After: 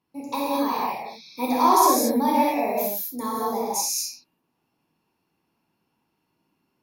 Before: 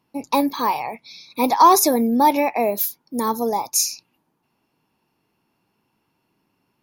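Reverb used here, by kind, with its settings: non-linear reverb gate 0.26 s flat, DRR -5.5 dB; gain -10.5 dB

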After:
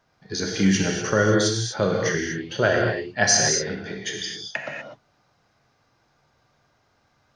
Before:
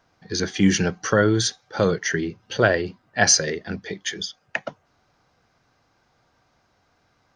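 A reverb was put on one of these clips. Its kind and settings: non-linear reverb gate 0.27 s flat, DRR -0.5 dB; gain -3.5 dB

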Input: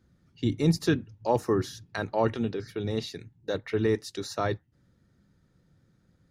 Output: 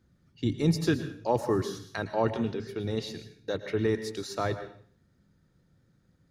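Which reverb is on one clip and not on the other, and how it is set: plate-style reverb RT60 0.51 s, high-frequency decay 1×, pre-delay 0.1 s, DRR 10.5 dB; gain -1.5 dB

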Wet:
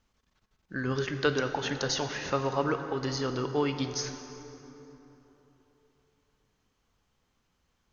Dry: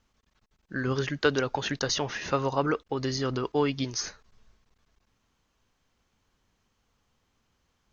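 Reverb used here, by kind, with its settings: plate-style reverb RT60 3.6 s, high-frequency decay 0.55×, DRR 7 dB; gain -2.5 dB

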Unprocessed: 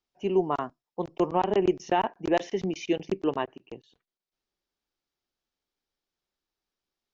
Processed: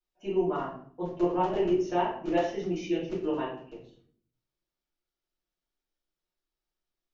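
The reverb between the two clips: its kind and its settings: shoebox room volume 66 m³, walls mixed, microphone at 2.7 m; gain -15.5 dB

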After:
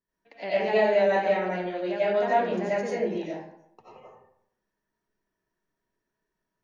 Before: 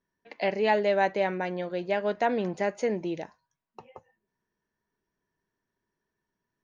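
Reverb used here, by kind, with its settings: digital reverb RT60 0.73 s, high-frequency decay 0.6×, pre-delay 50 ms, DRR -9.5 dB; gain -8.5 dB

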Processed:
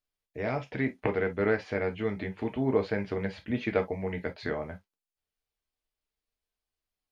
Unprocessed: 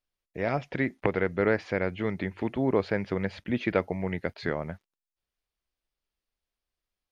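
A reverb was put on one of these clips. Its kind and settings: non-linear reverb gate 80 ms falling, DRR 3.5 dB; gain -4 dB

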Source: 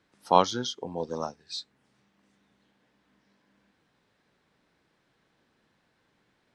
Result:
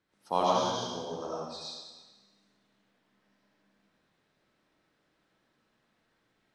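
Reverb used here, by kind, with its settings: digital reverb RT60 1.3 s, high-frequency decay 1×, pre-delay 45 ms, DRR -6.5 dB; gain -10 dB

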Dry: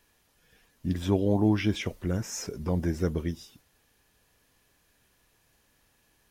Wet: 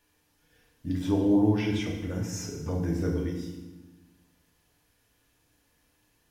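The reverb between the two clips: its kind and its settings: FDN reverb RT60 1.1 s, low-frequency decay 1.5×, high-frequency decay 0.85×, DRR -1 dB; gain -5.5 dB

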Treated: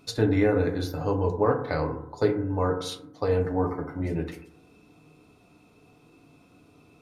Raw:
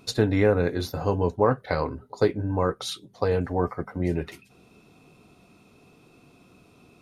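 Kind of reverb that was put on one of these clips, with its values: FDN reverb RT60 0.75 s, low-frequency decay 1.05×, high-frequency decay 0.3×, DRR 3 dB; gain -4 dB

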